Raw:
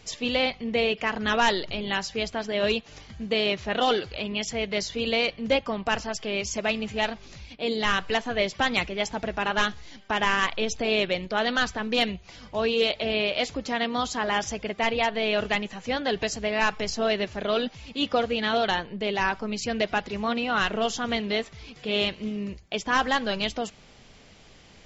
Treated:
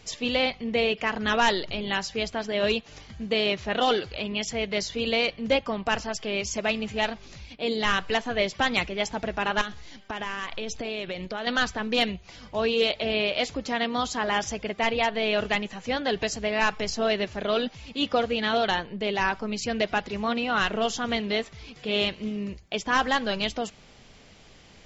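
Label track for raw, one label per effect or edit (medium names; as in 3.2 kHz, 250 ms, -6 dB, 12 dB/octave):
9.610000	11.470000	compression 10:1, threshold -28 dBFS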